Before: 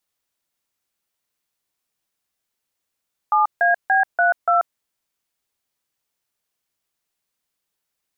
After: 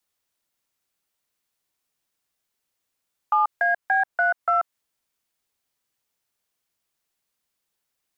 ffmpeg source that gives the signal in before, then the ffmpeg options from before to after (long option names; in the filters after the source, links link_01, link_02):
-f lavfi -i "aevalsrc='0.158*clip(min(mod(t,0.289),0.136-mod(t,0.289))/0.002,0,1)*(eq(floor(t/0.289),0)*(sin(2*PI*852*mod(t,0.289))+sin(2*PI*1209*mod(t,0.289)))+eq(floor(t/0.289),1)*(sin(2*PI*697*mod(t,0.289))+sin(2*PI*1633*mod(t,0.289)))+eq(floor(t/0.289),2)*(sin(2*PI*770*mod(t,0.289))+sin(2*PI*1633*mod(t,0.289)))+eq(floor(t/0.289),3)*(sin(2*PI*697*mod(t,0.289))+sin(2*PI*1477*mod(t,0.289)))+eq(floor(t/0.289),4)*(sin(2*PI*697*mod(t,0.289))+sin(2*PI*1336*mod(t,0.289))))':duration=1.445:sample_rate=44100"
-filter_complex "[0:a]acrossover=split=810|1700[link_01][link_02][link_03];[link_01]acompressor=threshold=-32dB:ratio=4[link_04];[link_02]acompressor=threshold=-18dB:ratio=4[link_05];[link_03]acompressor=threshold=-35dB:ratio=4[link_06];[link_04][link_05][link_06]amix=inputs=3:normalize=0,acrossover=split=630|790[link_07][link_08][link_09];[link_07]asoftclip=type=hard:threshold=-32.5dB[link_10];[link_10][link_08][link_09]amix=inputs=3:normalize=0"